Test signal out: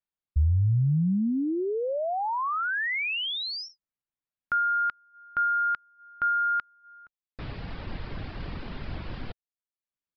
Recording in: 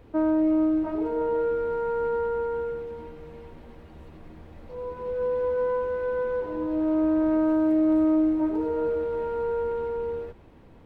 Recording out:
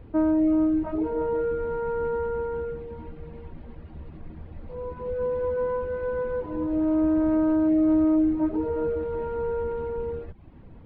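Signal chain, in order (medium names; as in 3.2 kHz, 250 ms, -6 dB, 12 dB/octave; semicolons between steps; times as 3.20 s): tone controls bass +8 dB, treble -9 dB; reverb removal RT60 0.52 s; resampled via 11.025 kHz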